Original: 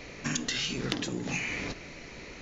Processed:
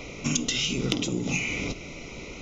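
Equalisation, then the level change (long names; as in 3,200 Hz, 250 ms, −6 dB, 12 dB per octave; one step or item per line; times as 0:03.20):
notch filter 4,400 Hz, Q 6.1
dynamic equaliser 1,000 Hz, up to −7 dB, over −53 dBFS, Q 0.98
Butterworth band-reject 1,700 Hz, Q 2.7
+6.5 dB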